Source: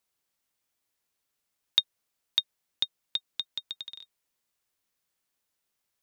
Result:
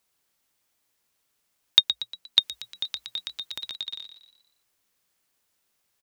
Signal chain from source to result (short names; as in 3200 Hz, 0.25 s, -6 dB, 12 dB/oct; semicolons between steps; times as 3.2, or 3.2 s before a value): frequency-shifting echo 0.118 s, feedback 44%, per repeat +57 Hz, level -10 dB; 2.39–3.76 transient shaper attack -10 dB, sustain +7 dB; gain +6.5 dB